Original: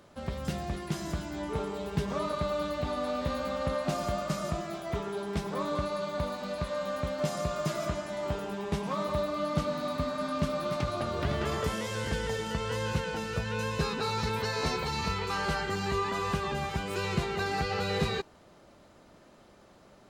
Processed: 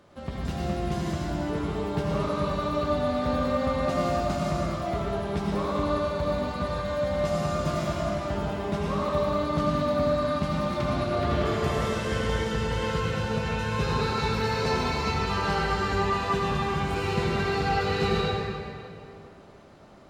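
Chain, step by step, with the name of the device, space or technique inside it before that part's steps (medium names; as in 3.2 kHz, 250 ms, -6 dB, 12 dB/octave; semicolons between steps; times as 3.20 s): swimming-pool hall (reverberation RT60 2.6 s, pre-delay 69 ms, DRR -3.5 dB; treble shelf 5.9 kHz -7 dB)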